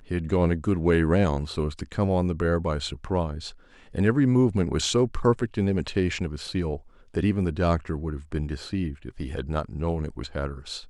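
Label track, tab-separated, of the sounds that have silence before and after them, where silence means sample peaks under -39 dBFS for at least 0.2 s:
3.950000	6.790000	sound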